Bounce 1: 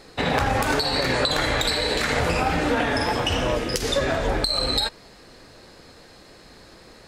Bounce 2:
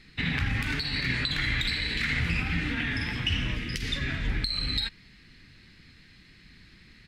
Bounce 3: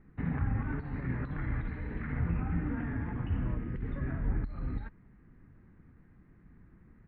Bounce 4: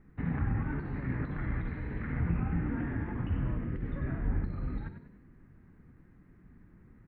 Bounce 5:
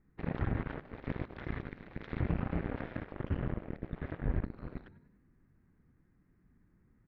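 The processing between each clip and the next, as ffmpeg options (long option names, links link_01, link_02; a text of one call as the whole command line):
ffmpeg -i in.wav -af "firequalizer=gain_entry='entry(180,0);entry(540,-26);entry(2000,2);entry(6800,-14)':delay=0.05:min_phase=1,volume=-1.5dB" out.wav
ffmpeg -i in.wav -af "lowpass=frequency=1200:width=0.5412,lowpass=frequency=1200:width=1.3066,volume=-1.5dB" out.wav
ffmpeg -i in.wav -filter_complex "[0:a]asplit=5[link_01][link_02][link_03][link_04][link_05];[link_02]adelay=97,afreqshift=53,volume=-9.5dB[link_06];[link_03]adelay=194,afreqshift=106,volume=-17.2dB[link_07];[link_04]adelay=291,afreqshift=159,volume=-25dB[link_08];[link_05]adelay=388,afreqshift=212,volume=-32.7dB[link_09];[link_01][link_06][link_07][link_08][link_09]amix=inputs=5:normalize=0" out.wav
ffmpeg -i in.wav -af "aeval=exprs='0.119*(cos(1*acos(clip(val(0)/0.119,-1,1)))-cos(1*PI/2))+0.0237*(cos(7*acos(clip(val(0)/0.119,-1,1)))-cos(7*PI/2))':channel_layout=same,volume=-2.5dB" out.wav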